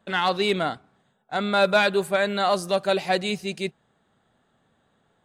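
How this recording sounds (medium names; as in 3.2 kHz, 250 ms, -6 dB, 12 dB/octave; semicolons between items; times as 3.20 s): noise floor -68 dBFS; spectral tilt -2.0 dB/octave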